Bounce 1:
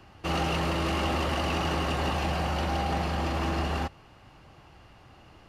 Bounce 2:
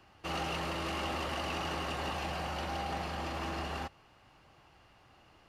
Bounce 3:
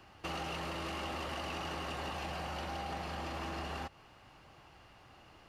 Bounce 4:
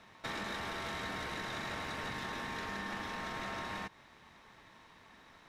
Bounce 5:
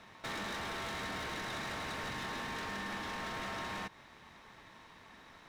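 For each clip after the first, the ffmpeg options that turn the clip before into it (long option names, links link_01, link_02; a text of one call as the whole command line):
ffmpeg -i in.wav -af "lowshelf=frequency=370:gain=-6.5,volume=-5.5dB" out.wav
ffmpeg -i in.wav -af "acompressor=threshold=-41dB:ratio=4,volume=3dB" out.wav
ffmpeg -i in.wav -af "aeval=exprs='val(0)*sin(2*PI*1000*n/s)':channel_layout=same,volume=2.5dB" out.wav
ffmpeg -i in.wav -af "asoftclip=type=hard:threshold=-38.5dB,volume=2.5dB" out.wav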